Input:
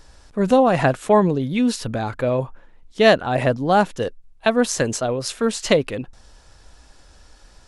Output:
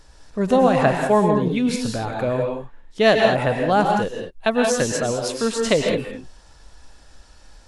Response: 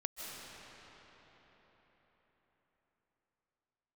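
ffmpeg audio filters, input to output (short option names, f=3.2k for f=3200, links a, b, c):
-filter_complex "[1:a]atrim=start_sample=2205,afade=t=out:st=0.36:d=0.01,atrim=end_sample=16317,asetrate=61740,aresample=44100[a];[0:a][a]afir=irnorm=-1:irlink=0,volume=4dB"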